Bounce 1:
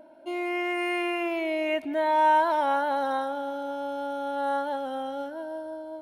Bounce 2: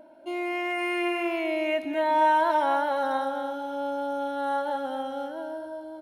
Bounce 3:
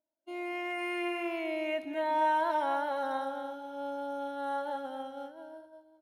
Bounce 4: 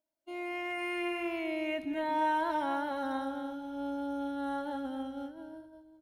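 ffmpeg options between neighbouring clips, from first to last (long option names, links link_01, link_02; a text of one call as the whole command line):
ffmpeg -i in.wav -af "aecho=1:1:242:0.355" out.wav
ffmpeg -i in.wav -af "agate=range=-33dB:threshold=-29dB:ratio=3:detection=peak,volume=-6.5dB" out.wav
ffmpeg -i in.wav -af "asubboost=boost=9.5:cutoff=210" out.wav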